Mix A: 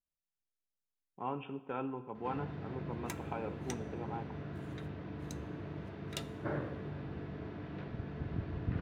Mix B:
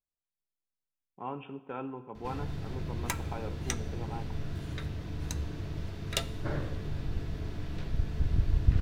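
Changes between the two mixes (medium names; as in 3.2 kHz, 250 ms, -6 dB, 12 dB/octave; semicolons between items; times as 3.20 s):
first sound: remove band-pass 160–2000 Hz; second sound +10.5 dB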